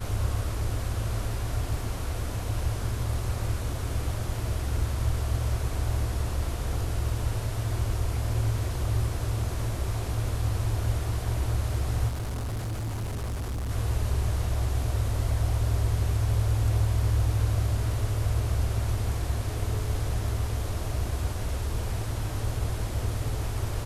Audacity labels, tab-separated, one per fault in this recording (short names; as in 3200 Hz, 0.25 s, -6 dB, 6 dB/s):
12.080000	13.710000	clipped -28.5 dBFS